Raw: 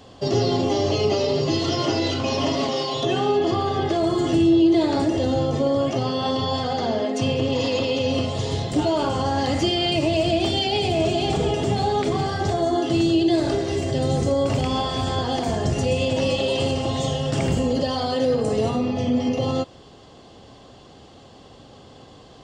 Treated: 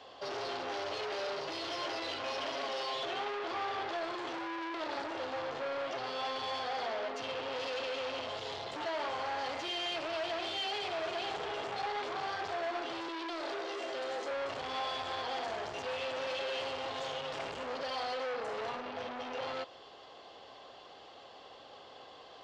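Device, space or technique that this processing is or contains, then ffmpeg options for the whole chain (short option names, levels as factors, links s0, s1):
saturation between pre-emphasis and de-emphasis: -filter_complex "[0:a]asettb=1/sr,asplit=3[s0][s1][s2];[s0]atrim=end=13.084[s3];[s1]atrim=start=13.08:end=14.31,asetpts=PTS-STARTPTS,afade=t=in:d=0.004:c=qsin,afade=t=out:st=1.226:d=0.004:c=qsin,highpass=f=260:w=0.5412,highpass=f=260:w=1.3066[s4];[s2]atrim=start=14.306[s5];[s3][s4]acrossfade=d=0.004:c1=hsin:c2=qsin[s6];[s6][s5]acrossfade=d=0.004:c1=qsin:c2=hsin,highshelf=f=8100:g=7.5,asoftclip=type=tanh:threshold=0.0335,acrossover=split=460 5100:gain=0.0794 1 0.0794[s7][s8][s9];[s7][s8][s9]amix=inputs=3:normalize=0,highshelf=f=8100:g=-7.5,volume=0.841"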